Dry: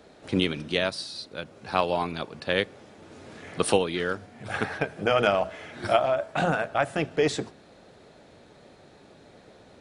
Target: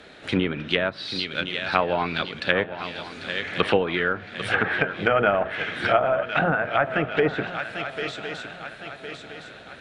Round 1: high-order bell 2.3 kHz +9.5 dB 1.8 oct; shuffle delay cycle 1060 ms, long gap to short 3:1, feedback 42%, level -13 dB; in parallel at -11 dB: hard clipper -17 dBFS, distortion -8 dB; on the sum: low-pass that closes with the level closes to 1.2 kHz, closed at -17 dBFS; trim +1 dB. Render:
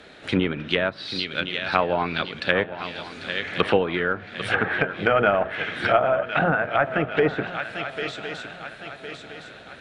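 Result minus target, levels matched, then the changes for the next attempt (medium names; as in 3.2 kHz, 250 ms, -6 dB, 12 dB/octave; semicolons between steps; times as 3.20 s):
hard clipper: distortion -6 dB
change: hard clipper -28 dBFS, distortion -2 dB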